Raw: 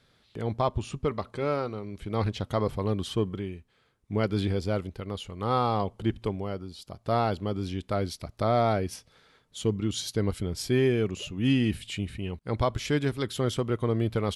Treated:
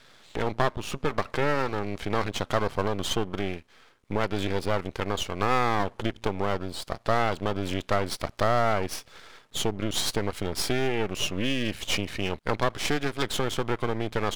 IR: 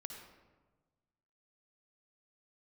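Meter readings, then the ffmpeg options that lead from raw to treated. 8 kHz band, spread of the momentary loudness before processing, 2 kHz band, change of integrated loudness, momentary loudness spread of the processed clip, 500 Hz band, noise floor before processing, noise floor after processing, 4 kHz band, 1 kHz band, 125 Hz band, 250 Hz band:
+6.0 dB, 11 LU, +8.0 dB, +1.0 dB, 7 LU, +0.5 dB, −66 dBFS, −57 dBFS, +6.0 dB, +3.0 dB, −3.5 dB, −2.0 dB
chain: -filter_complex "[0:a]acompressor=threshold=-31dB:ratio=6,asplit=2[link_01][link_02];[link_02]highpass=frequency=720:poles=1,volume=17dB,asoftclip=type=tanh:threshold=-7.5dB[link_03];[link_01][link_03]amix=inputs=2:normalize=0,lowpass=frequency=3300:poles=1,volume=-6dB,aeval=exprs='max(val(0),0)':channel_layout=same,volume=6.5dB"

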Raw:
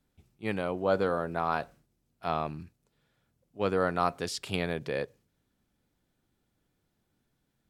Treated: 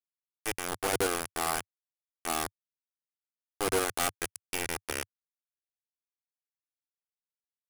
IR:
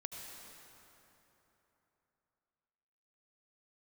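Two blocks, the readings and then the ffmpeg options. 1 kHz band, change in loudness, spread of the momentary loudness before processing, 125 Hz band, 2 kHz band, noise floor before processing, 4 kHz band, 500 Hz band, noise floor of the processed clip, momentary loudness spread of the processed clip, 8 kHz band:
−2.5 dB, −1.0 dB, 11 LU, −9.0 dB, +2.0 dB, −78 dBFS, +4.5 dB, −4.5 dB, below −85 dBFS, 10 LU, +14.0 dB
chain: -af "aecho=1:1:2.6:0.85,acrusher=bits=3:mix=0:aa=0.000001,equalizer=frequency=100:width_type=o:width=0.33:gain=-10,equalizer=frequency=4000:width_type=o:width=0.33:gain=-7,equalizer=frequency=10000:width_type=o:width=0.33:gain=11,aeval=exprs='0.112*(abs(mod(val(0)/0.112+3,4)-2)-1)':channel_layout=same"

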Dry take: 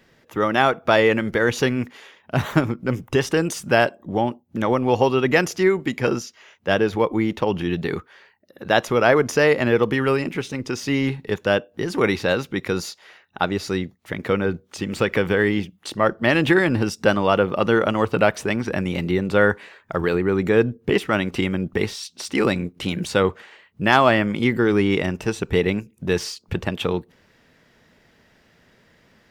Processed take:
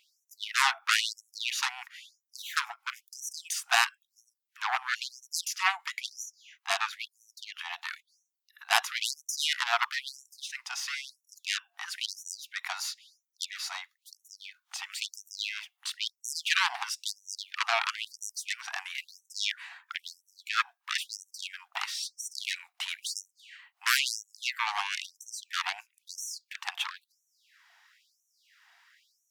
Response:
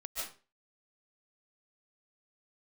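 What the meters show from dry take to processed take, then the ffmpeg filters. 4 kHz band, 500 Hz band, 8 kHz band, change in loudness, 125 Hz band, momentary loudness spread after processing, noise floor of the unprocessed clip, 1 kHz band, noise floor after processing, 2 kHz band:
−1.0 dB, −30.0 dB, +1.5 dB, −11.0 dB, below −40 dB, 16 LU, −59 dBFS, −10.0 dB, −82 dBFS, −8.0 dB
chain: -af "aeval=exprs='0.794*(cos(1*acos(clip(val(0)/0.794,-1,1)))-cos(1*PI/2))+0.141*(cos(6*acos(clip(val(0)/0.794,-1,1)))-cos(6*PI/2))+0.355*(cos(7*acos(clip(val(0)/0.794,-1,1)))-cos(7*PI/2))':channel_layout=same,afftfilt=real='re*gte(b*sr/1024,660*pow(5700/660,0.5+0.5*sin(2*PI*1*pts/sr)))':imag='im*gte(b*sr/1024,660*pow(5700/660,0.5+0.5*sin(2*PI*1*pts/sr)))':win_size=1024:overlap=0.75,volume=-8dB"

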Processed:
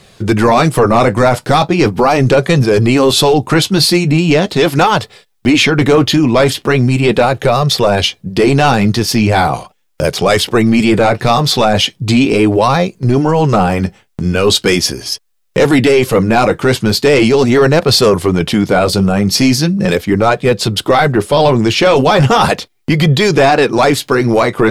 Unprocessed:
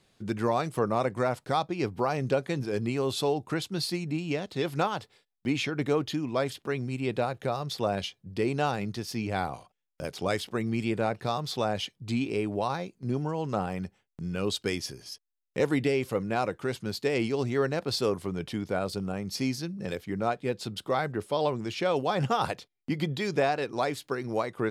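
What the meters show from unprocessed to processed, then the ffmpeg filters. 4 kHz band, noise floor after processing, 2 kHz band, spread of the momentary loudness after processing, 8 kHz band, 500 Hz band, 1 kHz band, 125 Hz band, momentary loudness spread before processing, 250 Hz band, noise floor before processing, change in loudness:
+21.0 dB, −56 dBFS, +19.5 dB, 5 LU, +22.0 dB, +18.0 dB, +18.0 dB, +20.0 dB, 7 LU, +19.5 dB, −78 dBFS, +19.0 dB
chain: -af "flanger=delay=1.6:depth=7.6:regen=-54:speed=0.39:shape=sinusoidal,apsyclip=30.5dB,volume=-4dB"

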